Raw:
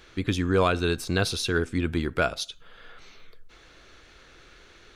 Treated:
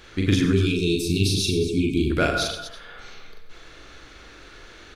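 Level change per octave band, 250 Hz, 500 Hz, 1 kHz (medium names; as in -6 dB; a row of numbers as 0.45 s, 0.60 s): +6.0 dB, +1.5 dB, -2.5 dB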